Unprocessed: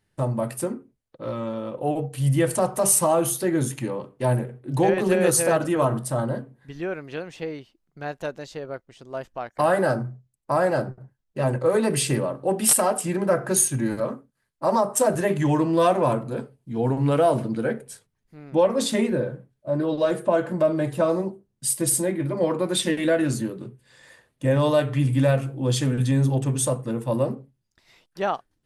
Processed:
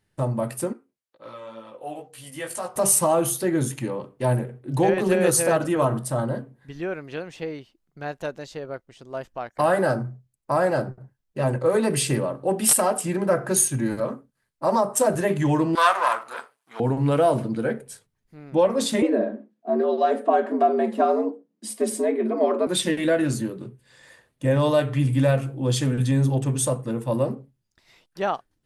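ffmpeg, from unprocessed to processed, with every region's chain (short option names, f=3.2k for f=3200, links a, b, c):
-filter_complex "[0:a]asettb=1/sr,asplit=3[a][b][c];[a]atrim=end=0.734[d];[b]atrim=start=0.73:end=2.76,asetpts=PTS-STARTPTS,afade=t=in:d=0.004:c=qsin,afade=t=out:st=2.026:d=0.004:c=qsin,highpass=f=940:p=1,flanger=delay=17:depth=2.5:speed=2.1[e];[c]atrim=start=2.756[f];[d][e]acrossfade=d=0.004:c1=hsin:c2=qsin[g];[g][f]acrossfade=d=0.004:c1=qsin:c2=hsin,asettb=1/sr,asplit=3[h][i][j];[h]atrim=end=15.754[k];[i]atrim=start=15.75:end=16.8,asetpts=PTS-STARTPTS,afade=t=in:d=0.004:c=qsin,afade=t=out:st=1.046:d=0.004:c=qsin,aeval=exprs='if(lt(val(0),0),0.447*val(0),val(0))':c=same,highpass=f=1.2k:t=q:w=1.9,acontrast=58[l];[j]atrim=start=16.796[m];[k][l]acrossfade=d=0.004:c1=hsin:c2=qsin[n];[n][m]acrossfade=d=0.004:c1=qsin:c2=hsin,asettb=1/sr,asplit=3[o][p][q];[o]atrim=end=19.024[r];[p]atrim=start=19.02:end=22.67,asetpts=PTS-STARTPTS,afade=t=in:d=0.004:c=qsin,afade=t=out:st=3.646:d=0.004:c=qsin,highpass=190,aemphasis=mode=reproduction:type=bsi,afreqshift=84[s];[q]atrim=start=22.666[t];[r][s]acrossfade=d=0.004:c1=hsin:c2=qsin[u];[u][t]acrossfade=d=0.004:c1=qsin:c2=hsin"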